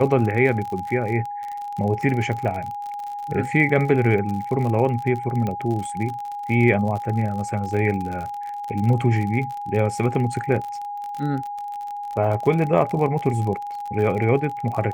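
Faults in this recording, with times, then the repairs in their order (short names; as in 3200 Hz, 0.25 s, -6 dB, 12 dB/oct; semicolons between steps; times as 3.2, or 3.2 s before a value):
crackle 50/s -28 dBFS
tone 820 Hz -28 dBFS
5.47 pop -15 dBFS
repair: de-click; notch 820 Hz, Q 30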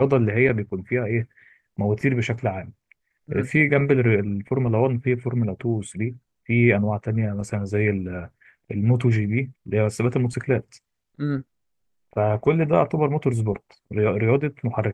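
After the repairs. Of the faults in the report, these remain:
none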